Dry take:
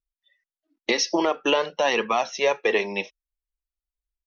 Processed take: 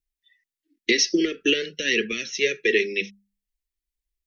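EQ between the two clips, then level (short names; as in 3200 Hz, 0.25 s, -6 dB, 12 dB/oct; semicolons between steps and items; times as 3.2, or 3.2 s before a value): elliptic band-stop 410–1800 Hz, stop band 70 dB; notches 50/100/150/200 Hz; +4.0 dB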